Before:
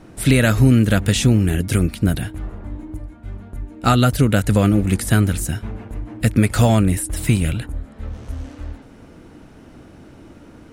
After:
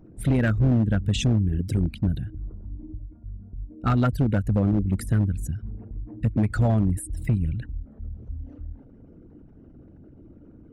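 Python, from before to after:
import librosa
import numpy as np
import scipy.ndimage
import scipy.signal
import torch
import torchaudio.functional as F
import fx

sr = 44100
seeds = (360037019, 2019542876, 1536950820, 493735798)

y = fx.envelope_sharpen(x, sr, power=2.0)
y = np.clip(y, -10.0 ** (-10.0 / 20.0), 10.0 ** (-10.0 / 20.0))
y = fx.peak_eq(y, sr, hz=9500.0, db=-7.0, octaves=0.33)
y = y * librosa.db_to_amplitude(-5.5)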